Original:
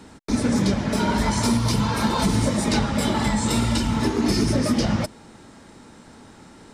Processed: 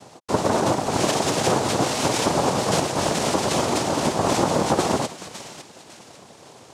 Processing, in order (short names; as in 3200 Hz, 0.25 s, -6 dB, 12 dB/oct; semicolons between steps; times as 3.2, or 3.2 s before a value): thinning echo 0.554 s, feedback 38%, high-pass 1000 Hz, level -8.5 dB; noise vocoder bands 2